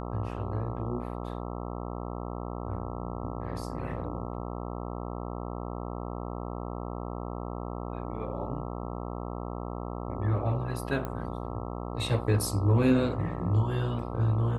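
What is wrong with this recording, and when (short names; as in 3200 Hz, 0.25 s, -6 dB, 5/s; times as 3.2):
buzz 60 Hz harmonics 22 -36 dBFS
11.05 pop -21 dBFS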